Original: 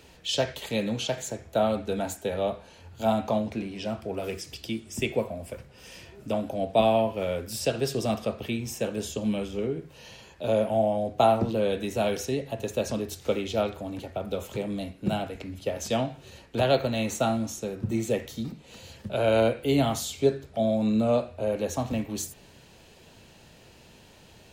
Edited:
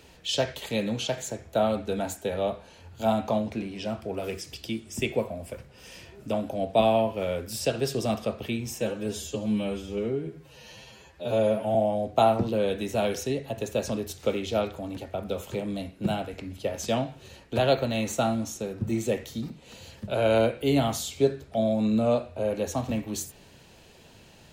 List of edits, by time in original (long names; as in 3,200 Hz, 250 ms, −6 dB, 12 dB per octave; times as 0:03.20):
0:08.81–0:10.77: time-stretch 1.5×